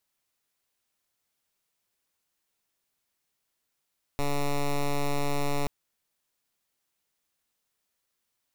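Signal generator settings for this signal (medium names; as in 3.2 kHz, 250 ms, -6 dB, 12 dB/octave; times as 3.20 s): pulse 143 Hz, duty 9% -26 dBFS 1.48 s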